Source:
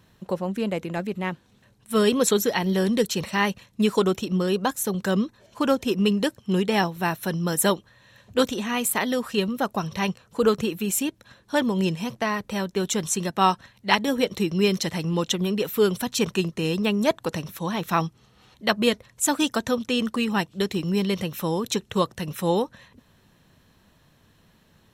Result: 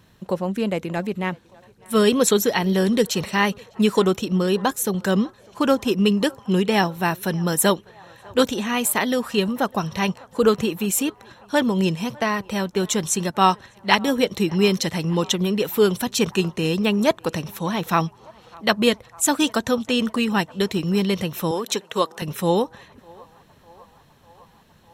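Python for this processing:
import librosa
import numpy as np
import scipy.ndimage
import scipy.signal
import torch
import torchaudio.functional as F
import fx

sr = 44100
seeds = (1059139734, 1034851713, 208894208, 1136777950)

y = fx.highpass(x, sr, hz=330.0, slope=12, at=(21.51, 22.22))
y = fx.echo_banded(y, sr, ms=601, feedback_pct=80, hz=910.0, wet_db=-23.0)
y = y * 10.0 ** (3.0 / 20.0)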